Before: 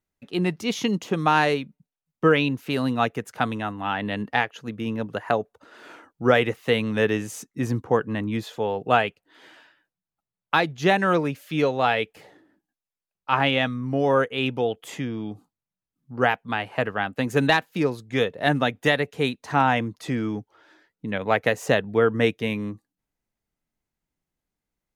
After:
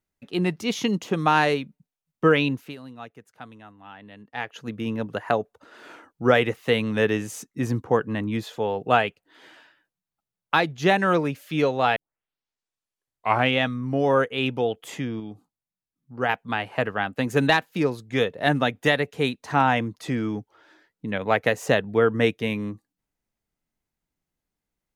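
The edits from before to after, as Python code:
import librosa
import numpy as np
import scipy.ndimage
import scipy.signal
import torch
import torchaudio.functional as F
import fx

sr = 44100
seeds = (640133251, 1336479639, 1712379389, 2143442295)

y = fx.edit(x, sr, fx.fade_down_up(start_s=2.53, length_s=2.03, db=-17.5, fade_s=0.23),
    fx.tape_start(start_s=11.96, length_s=1.61),
    fx.clip_gain(start_s=15.2, length_s=1.09, db=-4.5), tone=tone)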